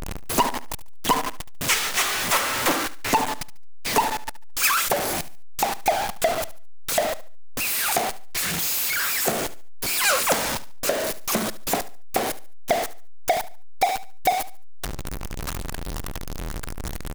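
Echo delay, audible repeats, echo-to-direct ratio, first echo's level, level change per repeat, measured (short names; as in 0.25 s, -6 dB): 72 ms, 2, -16.5 dB, -17.0 dB, -11.5 dB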